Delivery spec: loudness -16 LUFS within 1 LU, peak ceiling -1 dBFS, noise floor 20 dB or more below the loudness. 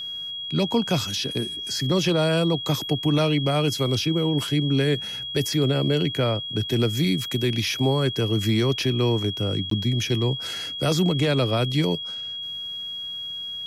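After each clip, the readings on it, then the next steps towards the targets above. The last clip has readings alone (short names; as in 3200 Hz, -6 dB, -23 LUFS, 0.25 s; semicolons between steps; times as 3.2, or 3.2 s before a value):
dropouts 1; longest dropout 13 ms; steady tone 3300 Hz; tone level -30 dBFS; loudness -23.5 LUFS; peak -11.0 dBFS; loudness target -16.0 LUFS
-> interpolate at 9.7, 13 ms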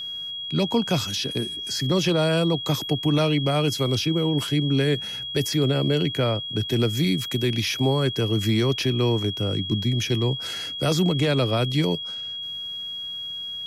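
dropouts 0; steady tone 3300 Hz; tone level -30 dBFS
-> notch 3300 Hz, Q 30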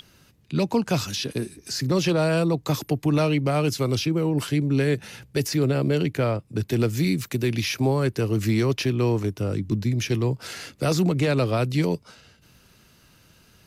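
steady tone none; loudness -24.0 LUFS; peak -12.0 dBFS; loudness target -16.0 LUFS
-> gain +8 dB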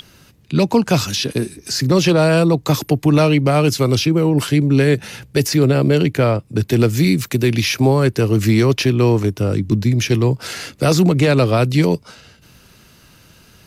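loudness -16.0 LUFS; peak -4.0 dBFS; noise floor -49 dBFS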